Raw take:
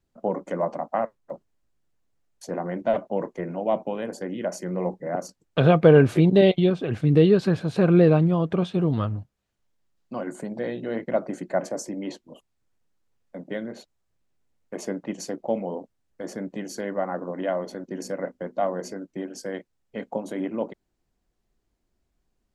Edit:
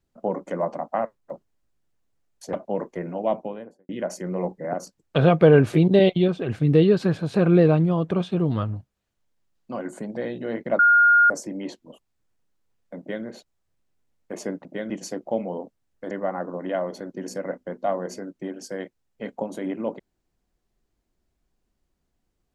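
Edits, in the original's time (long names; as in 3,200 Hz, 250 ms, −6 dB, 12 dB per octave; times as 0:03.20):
0:02.53–0:02.95: remove
0:03.70–0:04.31: fade out and dull
0:11.21–0:11.72: beep over 1,420 Hz −12 dBFS
0:13.41–0:13.66: duplicate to 0:15.07
0:16.28–0:16.85: remove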